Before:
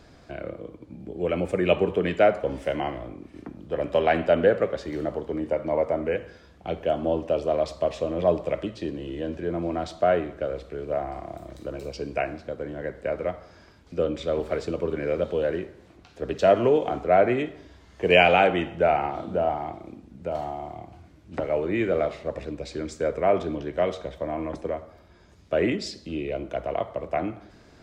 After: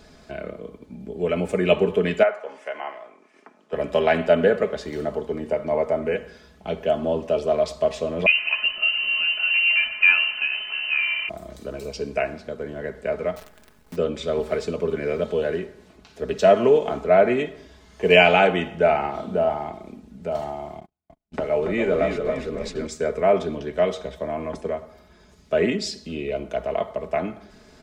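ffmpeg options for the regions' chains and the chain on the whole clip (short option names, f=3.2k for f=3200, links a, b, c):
-filter_complex "[0:a]asettb=1/sr,asplit=3[a][b][c];[a]atrim=end=2.234[d];[b]atrim=start=2.23:end=3.73,asetpts=PTS-STARTPTS,afade=t=in:d=0.004:c=qsin,afade=t=out:st=1.496:d=0.004:c=qsin,acrossover=split=3200[e][f];[f]acompressor=threshold=-56dB:ratio=4:attack=1:release=60[g];[e][g]amix=inputs=2:normalize=0,highpass=790,lowpass=6.4k,equalizer=f=3.9k:t=o:w=0.88:g=-9[h];[c]atrim=start=3.726[i];[d][h]acrossfade=d=0.004:c1=hsin:c2=qsin[j];[j][i]acrossfade=d=0.004:c1=qsin:c2=hsin,asettb=1/sr,asplit=3[k][l][m];[k]atrim=end=8.264[n];[l]atrim=start=8.26:end=11.29,asetpts=PTS-STARTPTS,afade=t=in:d=0.004:c=qsin,afade=t=out:st=3.026:d=0.004:c=qsin,aeval=exprs='val(0)+0.5*0.0178*sgn(val(0))':c=same,aecho=1:1:2.9:0.49,atrim=end_sample=133623,lowpass=f=2.6k:t=q:w=0.5098,lowpass=f=2.6k:t=q:w=0.6013,lowpass=f=2.6k:t=q:w=0.9,lowpass=f=2.6k:t=q:w=2.563,afreqshift=-3100[o];[m]atrim=start=11.286[p];[n][o]acrossfade=d=0.004:c1=hsin:c2=qsin[q];[q][p]acrossfade=d=0.004:c1=qsin:c2=hsin,asettb=1/sr,asplit=3[r][s][t];[r]atrim=end=13.364[u];[s]atrim=start=13.36:end=13.96,asetpts=PTS-STARTPTS,afade=t=in:d=0.004:c=qsin,afade=t=out:st=0.596:d=0.004:c=qsin,lowpass=2.2k,acrusher=bits=8:dc=4:mix=0:aa=0.000001[v];[t]atrim=start=13.956[w];[u][v]acrossfade=d=0.004:c1=hsin:c2=qsin[x];[x][w]acrossfade=d=0.004:c1=qsin:c2=hsin,asettb=1/sr,asplit=3[y][z][aa];[y]atrim=end=20.804[ab];[z]atrim=start=20.8:end=22.87,asetpts=PTS-STARTPTS,afade=t=in:d=0.004:c=qsin,afade=t=out:st=2.066:d=0.004:c=qsin,agate=range=-42dB:threshold=-41dB:ratio=16:release=100:detection=peak,asplit=6[ac][ad][ae][af][ag][ah];[ad]adelay=282,afreqshift=-41,volume=-5.5dB[ai];[ae]adelay=564,afreqshift=-82,volume=-12.4dB[aj];[af]adelay=846,afreqshift=-123,volume=-19.4dB[ak];[ag]adelay=1128,afreqshift=-164,volume=-26.3dB[al];[ah]adelay=1410,afreqshift=-205,volume=-33.2dB[am];[ac][ai][aj][ak][al][am]amix=inputs=6:normalize=0,atrim=end_sample=91287[an];[aa]atrim=start=22.866[ao];[ab][an]acrossfade=d=0.004:c1=hsin:c2=qsin[ap];[ap][ao]acrossfade=d=0.004:c1=qsin:c2=hsin,highshelf=f=5.2k:g=6,aecho=1:1:4.7:0.58,volume=1dB"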